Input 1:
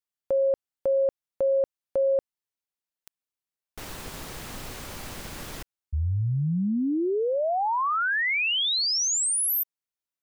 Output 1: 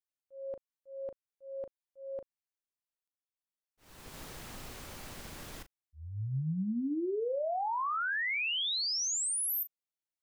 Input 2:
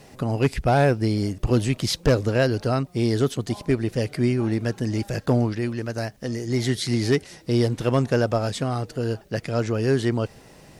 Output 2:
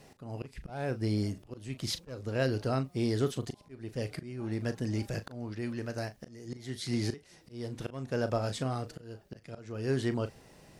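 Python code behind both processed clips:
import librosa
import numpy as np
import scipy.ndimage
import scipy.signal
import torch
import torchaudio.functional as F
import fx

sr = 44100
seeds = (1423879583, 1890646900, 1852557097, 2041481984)

y = fx.auto_swell(x, sr, attack_ms=433.0)
y = fx.doubler(y, sr, ms=38.0, db=-12)
y = y * librosa.db_to_amplitude(-8.0)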